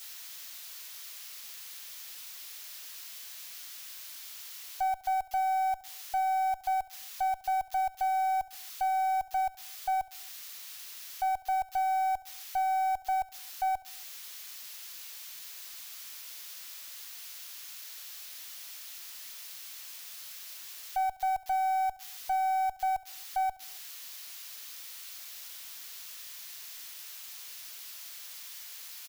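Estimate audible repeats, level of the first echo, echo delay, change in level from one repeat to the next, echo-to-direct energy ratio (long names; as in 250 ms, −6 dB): 3, −19.0 dB, 69 ms, −5.5 dB, −17.5 dB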